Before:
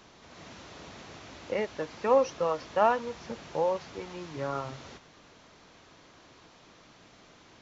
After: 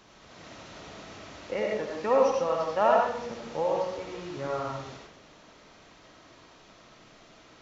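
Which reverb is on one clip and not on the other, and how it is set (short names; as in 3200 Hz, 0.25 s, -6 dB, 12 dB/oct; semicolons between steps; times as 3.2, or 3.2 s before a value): digital reverb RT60 0.67 s, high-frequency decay 0.55×, pre-delay 45 ms, DRR -1 dB; gain -1.5 dB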